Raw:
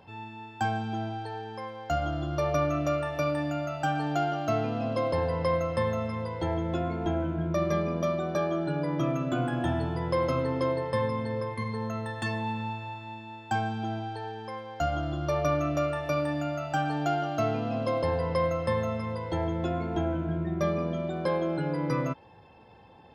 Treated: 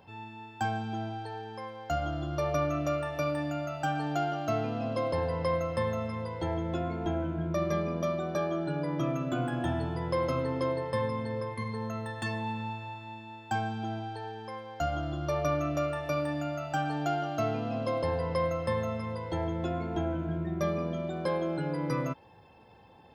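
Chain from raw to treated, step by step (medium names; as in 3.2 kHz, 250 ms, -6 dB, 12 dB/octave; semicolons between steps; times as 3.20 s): treble shelf 9.8 kHz +4.5 dB, from 20.19 s +10.5 dB; trim -2.5 dB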